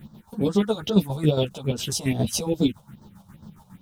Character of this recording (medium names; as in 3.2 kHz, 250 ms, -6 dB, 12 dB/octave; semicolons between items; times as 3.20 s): a quantiser's noise floor 10-bit, dither none; phasing stages 4, 2.4 Hz, lowest notch 290–2400 Hz; chopped level 7.3 Hz, depth 60%, duty 45%; a shimmering, thickened sound